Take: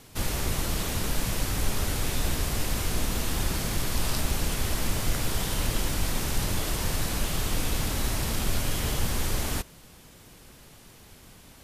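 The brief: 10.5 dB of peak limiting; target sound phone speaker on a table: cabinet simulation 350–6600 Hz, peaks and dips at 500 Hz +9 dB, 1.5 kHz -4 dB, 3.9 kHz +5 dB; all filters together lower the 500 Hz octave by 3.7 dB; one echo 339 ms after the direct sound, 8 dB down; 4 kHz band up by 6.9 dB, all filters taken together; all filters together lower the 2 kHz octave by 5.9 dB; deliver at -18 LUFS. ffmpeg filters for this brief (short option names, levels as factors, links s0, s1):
-af "equalizer=f=500:t=o:g=-9,equalizer=f=2000:t=o:g=-9,equalizer=f=4000:t=o:g=8,alimiter=limit=0.0841:level=0:latency=1,highpass=f=350:w=0.5412,highpass=f=350:w=1.3066,equalizer=f=500:t=q:w=4:g=9,equalizer=f=1500:t=q:w=4:g=-4,equalizer=f=3900:t=q:w=4:g=5,lowpass=f=6600:w=0.5412,lowpass=f=6600:w=1.3066,aecho=1:1:339:0.398,volume=5.31"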